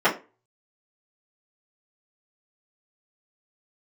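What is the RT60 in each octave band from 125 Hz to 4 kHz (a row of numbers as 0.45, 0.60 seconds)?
0.30, 0.30, 0.30, 0.30, 0.25, 0.20 seconds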